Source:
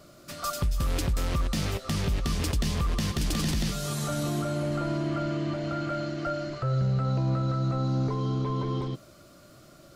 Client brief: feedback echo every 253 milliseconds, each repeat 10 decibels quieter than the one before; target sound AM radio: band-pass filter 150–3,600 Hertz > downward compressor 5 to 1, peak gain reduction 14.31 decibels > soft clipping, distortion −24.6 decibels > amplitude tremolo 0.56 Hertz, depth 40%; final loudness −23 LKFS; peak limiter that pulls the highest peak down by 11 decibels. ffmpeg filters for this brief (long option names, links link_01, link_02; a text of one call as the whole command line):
ffmpeg -i in.wav -af "alimiter=level_in=4.5dB:limit=-24dB:level=0:latency=1,volume=-4.5dB,highpass=150,lowpass=3600,aecho=1:1:253|506|759|1012:0.316|0.101|0.0324|0.0104,acompressor=threshold=-48dB:ratio=5,asoftclip=threshold=-39.5dB,tremolo=f=0.56:d=0.4,volume=29.5dB" out.wav